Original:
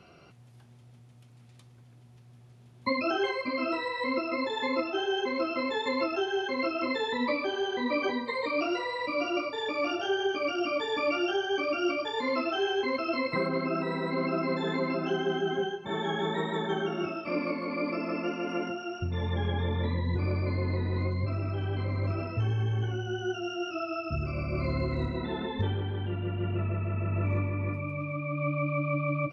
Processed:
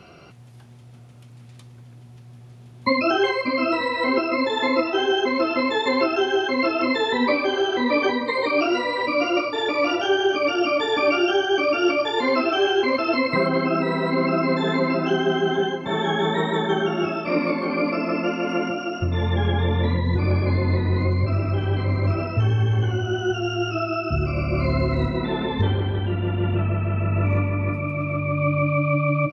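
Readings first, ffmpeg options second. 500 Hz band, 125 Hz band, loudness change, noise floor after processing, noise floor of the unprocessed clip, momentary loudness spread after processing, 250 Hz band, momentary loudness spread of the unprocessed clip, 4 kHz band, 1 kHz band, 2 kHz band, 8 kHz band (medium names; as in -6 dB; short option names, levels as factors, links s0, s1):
+8.5 dB, +8.5 dB, +8.5 dB, -45 dBFS, -55 dBFS, 4 LU, +8.5 dB, 4 LU, +8.5 dB, +8.5 dB, +8.5 dB, no reading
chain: -filter_complex "[0:a]asplit=2[s0][s1];[s1]adelay=932.9,volume=0.251,highshelf=f=4000:g=-21[s2];[s0][s2]amix=inputs=2:normalize=0,volume=2.66"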